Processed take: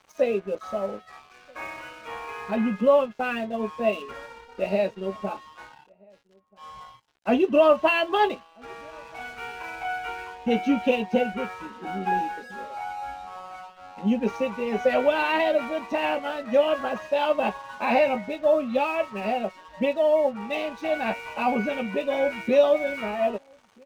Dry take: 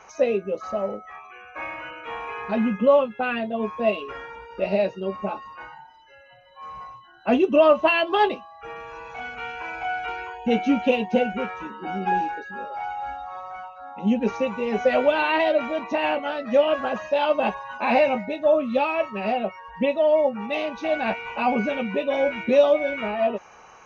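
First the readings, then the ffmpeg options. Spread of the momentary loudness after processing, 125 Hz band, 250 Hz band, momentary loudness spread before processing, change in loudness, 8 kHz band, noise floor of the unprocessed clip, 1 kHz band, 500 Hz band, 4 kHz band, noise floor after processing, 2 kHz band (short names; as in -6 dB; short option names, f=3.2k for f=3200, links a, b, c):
18 LU, -2.0 dB, -2.0 dB, 17 LU, -1.5 dB, n/a, -49 dBFS, -2.0 dB, -2.0 dB, -2.0 dB, -56 dBFS, -2.0 dB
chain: -filter_complex "[0:a]aeval=exprs='sgn(val(0))*max(abs(val(0))-0.00501,0)':c=same,asplit=2[a][b];[b]adelay=1283,volume=-29dB,highshelf=f=4k:g=-28.9[c];[a][c]amix=inputs=2:normalize=0,volume=-1.5dB"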